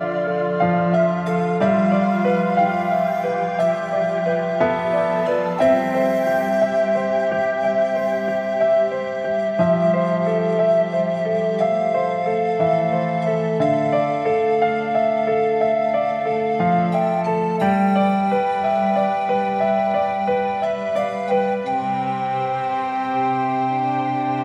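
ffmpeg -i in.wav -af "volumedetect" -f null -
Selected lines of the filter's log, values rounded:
mean_volume: -19.2 dB
max_volume: -5.6 dB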